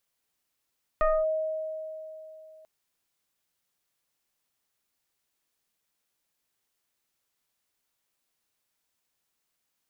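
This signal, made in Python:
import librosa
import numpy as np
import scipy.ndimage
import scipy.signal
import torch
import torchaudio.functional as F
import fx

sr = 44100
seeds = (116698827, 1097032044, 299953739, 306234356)

y = fx.fm2(sr, length_s=1.64, level_db=-19, carrier_hz=630.0, ratio=0.97, index=1.3, index_s=0.24, decay_s=3.18, shape='linear')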